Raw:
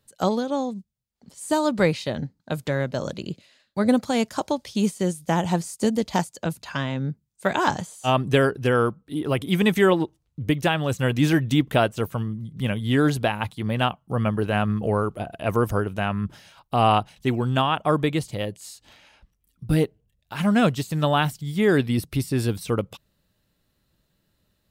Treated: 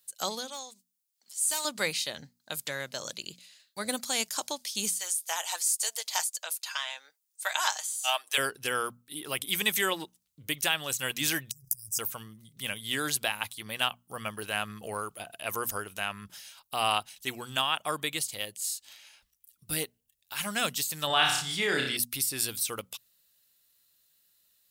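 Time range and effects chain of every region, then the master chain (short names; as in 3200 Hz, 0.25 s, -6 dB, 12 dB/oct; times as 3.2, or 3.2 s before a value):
0.48–1.65 HPF 1100 Hz 6 dB/oct + overloaded stage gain 22 dB
4.95–8.38 HPF 630 Hz 24 dB/oct + comb 6.4 ms, depth 38%
11.51–11.99 brick-wall FIR band-stop 180–4800 Hz + negative-ratio compressor -36 dBFS
21.07–21.97 LPF 5200 Hz + flutter echo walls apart 5.2 m, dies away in 0.44 s + fast leveller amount 50%
whole clip: pre-emphasis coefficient 0.97; notches 60/120/180/240 Hz; gain +8.5 dB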